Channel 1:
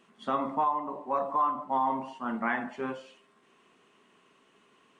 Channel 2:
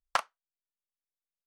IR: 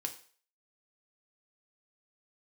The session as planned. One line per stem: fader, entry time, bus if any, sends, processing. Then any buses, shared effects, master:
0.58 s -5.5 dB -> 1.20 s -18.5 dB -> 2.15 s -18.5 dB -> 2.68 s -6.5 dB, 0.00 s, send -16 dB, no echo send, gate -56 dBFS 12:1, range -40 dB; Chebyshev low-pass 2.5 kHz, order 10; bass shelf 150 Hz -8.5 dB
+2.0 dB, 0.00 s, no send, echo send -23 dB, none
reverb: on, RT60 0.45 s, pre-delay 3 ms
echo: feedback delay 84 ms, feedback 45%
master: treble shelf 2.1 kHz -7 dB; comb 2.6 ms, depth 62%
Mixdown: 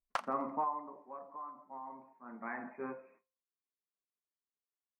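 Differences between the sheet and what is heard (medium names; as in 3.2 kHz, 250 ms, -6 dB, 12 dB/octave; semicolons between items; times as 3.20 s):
stem 2 +2.0 dB -> -6.0 dB; master: missing comb 2.6 ms, depth 62%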